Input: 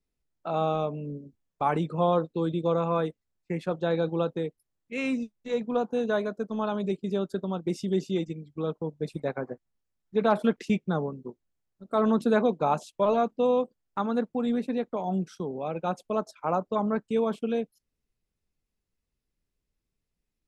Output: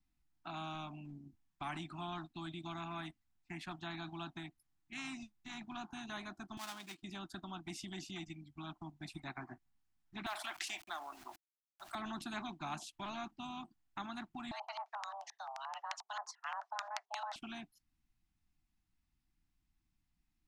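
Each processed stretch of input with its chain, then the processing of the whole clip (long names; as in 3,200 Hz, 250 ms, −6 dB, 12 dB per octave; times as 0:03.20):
0:06.57–0:07.03: gap after every zero crossing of 0.094 ms + high-pass filter 1,200 Hz 6 dB per octave
0:10.26–0:11.95: elliptic high-pass filter 570 Hz, stop band 80 dB + log-companded quantiser 8 bits + envelope flattener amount 50%
0:14.51–0:17.36: auto-filter low-pass square 5.7 Hz 480–5,400 Hz + frequency shifter +400 Hz
whole clip: Chebyshev band-stop filter 330–720 Hz, order 3; high-shelf EQ 4,700 Hz −6.5 dB; every bin compressed towards the loudest bin 2 to 1; level −5.5 dB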